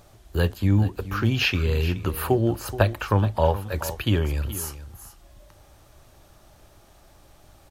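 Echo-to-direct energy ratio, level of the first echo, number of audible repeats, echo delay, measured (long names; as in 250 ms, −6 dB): −14.0 dB, −14.0 dB, 1, 425 ms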